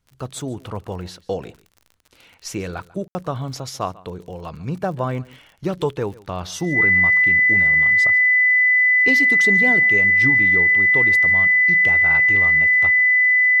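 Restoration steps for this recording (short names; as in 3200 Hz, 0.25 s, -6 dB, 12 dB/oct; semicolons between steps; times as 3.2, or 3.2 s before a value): de-click; notch 2000 Hz, Q 30; room tone fill 3.08–3.15; inverse comb 0.143 s -21 dB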